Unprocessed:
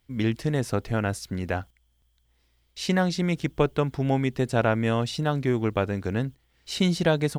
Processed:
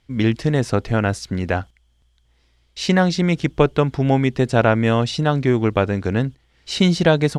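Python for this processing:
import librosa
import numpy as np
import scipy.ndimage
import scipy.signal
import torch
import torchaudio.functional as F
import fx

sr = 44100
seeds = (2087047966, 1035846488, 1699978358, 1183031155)

y = scipy.signal.sosfilt(scipy.signal.butter(2, 7500.0, 'lowpass', fs=sr, output='sos'), x)
y = y * 10.0 ** (7.0 / 20.0)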